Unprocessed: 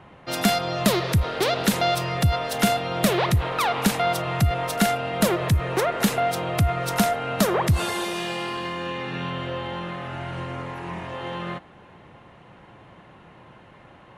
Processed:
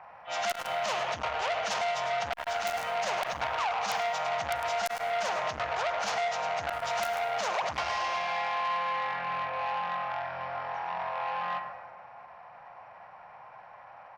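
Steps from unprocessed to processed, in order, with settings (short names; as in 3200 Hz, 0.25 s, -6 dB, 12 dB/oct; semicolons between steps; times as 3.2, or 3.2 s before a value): nonlinear frequency compression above 1600 Hz 1.5:1; transient shaper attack -7 dB, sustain +6 dB; notches 50/100/150 Hz; hard clip -15 dBFS, distortion -26 dB; resonant low shelf 490 Hz -14 dB, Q 3; wrapped overs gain 9 dB; outdoor echo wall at 18 m, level -9 dB; compressor, threshold -22 dBFS, peak gain reduction 9 dB; on a send at -9.5 dB: reverb RT60 2.0 s, pre-delay 28 ms; on the sum: core saturation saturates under 2300 Hz; gain -3 dB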